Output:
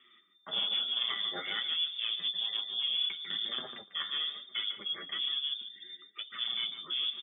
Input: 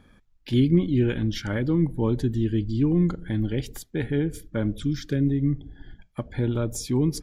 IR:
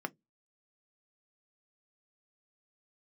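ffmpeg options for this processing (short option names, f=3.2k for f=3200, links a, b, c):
-filter_complex "[0:a]asettb=1/sr,asplit=3[a][b][c];[a]atrim=end=4.684[d];[b]atrim=start=4.68:end=5.19,asetpts=PTS-STARTPTS,afade=t=in:d=0.004:c=qsin,afade=t=out:st=0.506:d=0.004:c=qsin,highpass=f=190:w=0.5412,highpass=f=190:w=1.3066[e];[c]atrim=start=5.186[f];[d][e]acrossfade=d=0.004:c1=hsin:c2=qsin[g];[g][f]acrossfade=d=0.004:c1=qsin:c2=hsin,asoftclip=type=tanh:threshold=-21dB,lowpass=f=3.1k:t=q:w=0.5098,lowpass=f=3.1k:t=q:w=0.6013,lowpass=f=3.1k:t=q:w=0.9,lowpass=f=3.1k:t=q:w=2.563,afreqshift=-3600,asplit=2[h][i];[i]adelay=147,lowpass=f=1.1k:p=1,volume=-4.5dB,asplit=2[j][k];[k]adelay=147,lowpass=f=1.1k:p=1,volume=0.19,asplit=2[l][m];[m]adelay=147,lowpass=f=1.1k:p=1,volume=0.19[n];[h][j][l][n]amix=inputs=4:normalize=0[o];[1:a]atrim=start_sample=2205[p];[o][p]afir=irnorm=-1:irlink=0,flanger=delay=7.9:depth=3.3:regen=20:speed=1.1:shape=sinusoidal,asettb=1/sr,asplit=3[q][r][s];[q]atrim=end=2.934[t];[r]atrim=start=2.93:end=3.84,asetpts=PTS-STARTPTS,afade=t=in:d=0.004:c=qsin,afade=t=out:st=0.906:d=0.004:c=qsin,lowshelf=f=450:g=7.5[u];[s]atrim=start=3.836[v];[t][u]acrossfade=d=0.004:c1=hsin:c2=qsin[w];[w][v]acrossfade=d=0.004:c1=qsin:c2=hsin"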